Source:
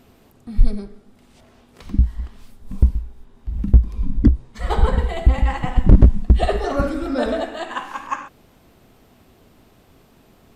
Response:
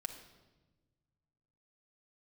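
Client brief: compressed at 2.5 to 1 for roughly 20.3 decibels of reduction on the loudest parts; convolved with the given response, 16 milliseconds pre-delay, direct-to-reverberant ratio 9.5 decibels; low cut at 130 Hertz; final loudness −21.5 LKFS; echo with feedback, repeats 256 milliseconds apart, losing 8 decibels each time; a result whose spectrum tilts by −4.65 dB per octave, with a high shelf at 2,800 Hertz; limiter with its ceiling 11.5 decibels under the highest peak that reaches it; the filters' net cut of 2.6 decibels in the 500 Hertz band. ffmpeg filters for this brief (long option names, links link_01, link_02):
-filter_complex "[0:a]highpass=130,equalizer=frequency=500:width_type=o:gain=-3.5,highshelf=frequency=2800:gain=3.5,acompressor=threshold=-44dB:ratio=2.5,alimiter=level_in=10dB:limit=-24dB:level=0:latency=1,volume=-10dB,aecho=1:1:256|512|768|1024|1280:0.398|0.159|0.0637|0.0255|0.0102,asplit=2[link_01][link_02];[1:a]atrim=start_sample=2205,adelay=16[link_03];[link_02][link_03]afir=irnorm=-1:irlink=0,volume=-8dB[link_04];[link_01][link_04]amix=inputs=2:normalize=0,volume=23.5dB"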